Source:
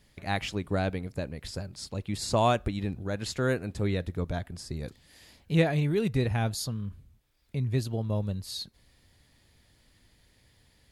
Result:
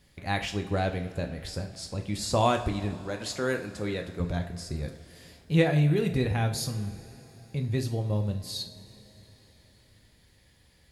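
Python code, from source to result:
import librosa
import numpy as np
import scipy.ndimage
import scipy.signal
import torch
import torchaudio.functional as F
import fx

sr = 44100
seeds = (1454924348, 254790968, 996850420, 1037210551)

y = fx.highpass(x, sr, hz=280.0, slope=6, at=(2.94, 4.2))
y = fx.rev_double_slope(y, sr, seeds[0], early_s=0.41, late_s=4.2, knee_db=-19, drr_db=4.5)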